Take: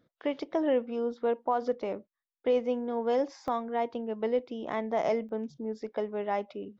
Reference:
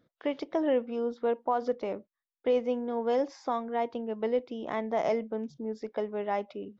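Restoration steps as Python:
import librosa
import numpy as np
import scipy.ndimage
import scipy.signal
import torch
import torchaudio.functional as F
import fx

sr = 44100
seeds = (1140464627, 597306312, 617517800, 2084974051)

y = fx.fix_interpolate(x, sr, at_s=(3.48, 5.29), length_ms=1.1)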